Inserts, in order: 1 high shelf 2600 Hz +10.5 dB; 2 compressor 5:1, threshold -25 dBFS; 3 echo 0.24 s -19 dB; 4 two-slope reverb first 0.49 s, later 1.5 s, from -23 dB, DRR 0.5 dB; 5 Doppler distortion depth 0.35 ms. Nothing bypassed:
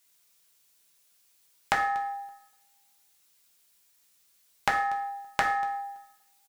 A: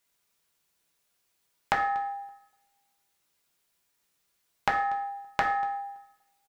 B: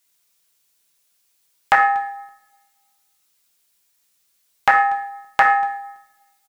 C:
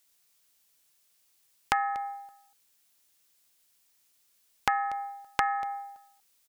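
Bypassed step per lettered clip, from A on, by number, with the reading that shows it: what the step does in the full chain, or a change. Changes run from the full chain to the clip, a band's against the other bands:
1, 4 kHz band -4.0 dB; 2, crest factor change -8.0 dB; 4, 500 Hz band -4.0 dB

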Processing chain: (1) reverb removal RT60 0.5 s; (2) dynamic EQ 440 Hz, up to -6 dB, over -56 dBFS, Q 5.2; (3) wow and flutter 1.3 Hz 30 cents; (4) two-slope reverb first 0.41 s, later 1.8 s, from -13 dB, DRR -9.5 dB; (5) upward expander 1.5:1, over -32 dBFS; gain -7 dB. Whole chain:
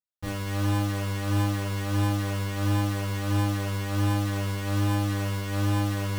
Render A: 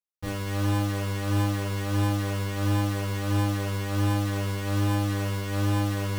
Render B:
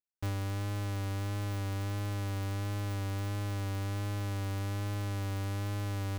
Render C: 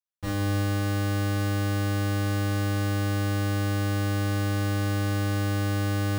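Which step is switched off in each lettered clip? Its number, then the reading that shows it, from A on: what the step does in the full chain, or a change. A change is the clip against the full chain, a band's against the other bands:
2, 500 Hz band +1.5 dB; 4, momentary loudness spread change -4 LU; 3, 2 kHz band +2.0 dB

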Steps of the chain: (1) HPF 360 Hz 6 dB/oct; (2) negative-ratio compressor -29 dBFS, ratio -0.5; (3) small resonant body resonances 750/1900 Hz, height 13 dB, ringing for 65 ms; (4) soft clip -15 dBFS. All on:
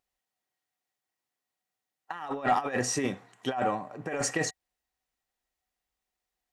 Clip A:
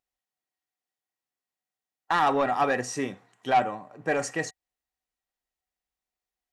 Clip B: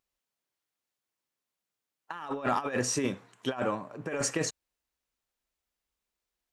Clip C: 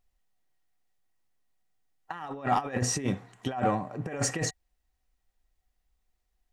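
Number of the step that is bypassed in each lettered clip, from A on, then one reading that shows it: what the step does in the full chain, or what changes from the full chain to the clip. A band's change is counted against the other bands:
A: 2, crest factor change -4.0 dB; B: 3, 1 kHz band -4.5 dB; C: 1, 125 Hz band +7.0 dB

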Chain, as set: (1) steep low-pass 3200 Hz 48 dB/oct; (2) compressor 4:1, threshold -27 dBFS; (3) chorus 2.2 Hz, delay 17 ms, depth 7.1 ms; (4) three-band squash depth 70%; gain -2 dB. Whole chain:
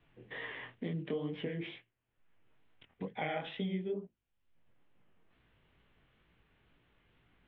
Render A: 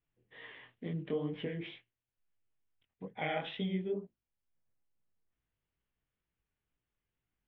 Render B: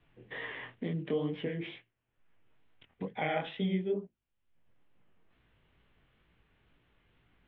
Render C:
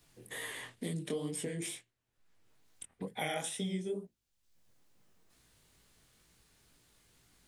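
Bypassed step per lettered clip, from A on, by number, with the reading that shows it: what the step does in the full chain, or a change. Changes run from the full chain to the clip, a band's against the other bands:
4, momentary loudness spread change +7 LU; 2, mean gain reduction 2.0 dB; 1, 4 kHz band +4.5 dB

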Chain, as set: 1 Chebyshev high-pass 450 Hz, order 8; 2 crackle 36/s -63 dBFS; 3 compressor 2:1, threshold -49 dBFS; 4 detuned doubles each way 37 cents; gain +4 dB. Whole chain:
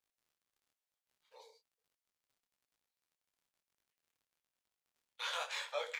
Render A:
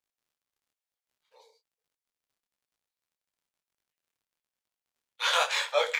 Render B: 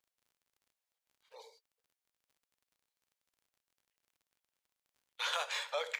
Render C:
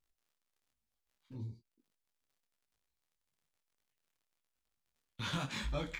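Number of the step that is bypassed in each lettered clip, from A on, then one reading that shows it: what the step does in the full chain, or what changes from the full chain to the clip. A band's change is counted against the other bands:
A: 3, mean gain reduction 11.0 dB; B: 4, crest factor change +1.5 dB; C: 1, crest factor change -2.5 dB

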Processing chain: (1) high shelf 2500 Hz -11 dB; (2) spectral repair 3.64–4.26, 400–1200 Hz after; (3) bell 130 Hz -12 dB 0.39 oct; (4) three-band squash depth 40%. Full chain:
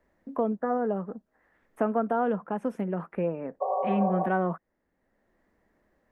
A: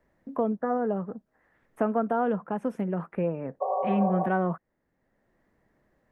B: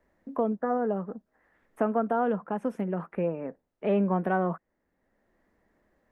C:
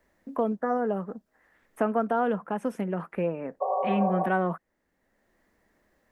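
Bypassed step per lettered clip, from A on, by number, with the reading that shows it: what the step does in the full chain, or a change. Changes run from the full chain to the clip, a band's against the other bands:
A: 3, 125 Hz band +2.0 dB; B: 2, 1 kHz band -2.0 dB; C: 1, 2 kHz band +3.0 dB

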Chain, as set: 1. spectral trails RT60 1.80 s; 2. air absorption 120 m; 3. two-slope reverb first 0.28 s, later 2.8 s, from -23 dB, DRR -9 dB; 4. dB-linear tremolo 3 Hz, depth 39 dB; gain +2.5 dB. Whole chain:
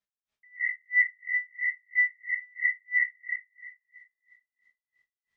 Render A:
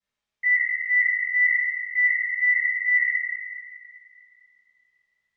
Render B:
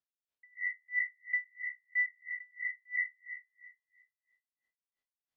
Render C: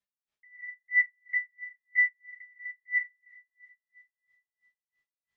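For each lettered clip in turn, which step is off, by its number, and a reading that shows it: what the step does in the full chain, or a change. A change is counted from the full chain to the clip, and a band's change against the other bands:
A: 4, momentary loudness spread change -2 LU; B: 3, loudness change -8.0 LU; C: 1, momentary loudness spread change +7 LU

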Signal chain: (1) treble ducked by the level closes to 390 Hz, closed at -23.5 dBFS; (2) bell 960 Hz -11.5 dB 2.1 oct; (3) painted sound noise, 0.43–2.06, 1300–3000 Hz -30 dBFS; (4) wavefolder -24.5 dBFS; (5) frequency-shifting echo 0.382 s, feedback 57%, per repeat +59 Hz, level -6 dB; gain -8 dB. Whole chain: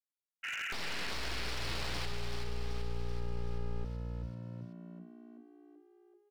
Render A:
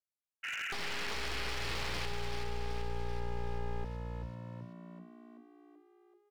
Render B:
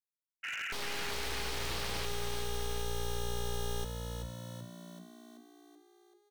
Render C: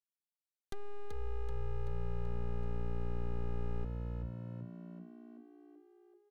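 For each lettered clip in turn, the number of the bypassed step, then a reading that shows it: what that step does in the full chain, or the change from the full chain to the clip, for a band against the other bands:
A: 2, 1 kHz band +3.5 dB; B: 1, 8 kHz band +6.5 dB; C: 3, 4 kHz band -23.0 dB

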